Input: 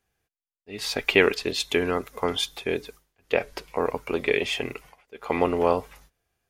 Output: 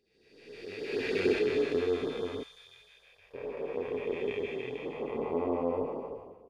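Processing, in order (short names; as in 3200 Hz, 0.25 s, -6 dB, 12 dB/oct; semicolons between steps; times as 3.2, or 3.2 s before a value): time blur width 0.965 s; doubler 31 ms -5.5 dB; 0.85–1.39 flutter echo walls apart 11 m, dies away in 1.1 s; LFO notch sine 6.4 Hz 240–2600 Hz; 2.43–3.34 passive tone stack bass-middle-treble 10-0-10; spectral expander 1.5:1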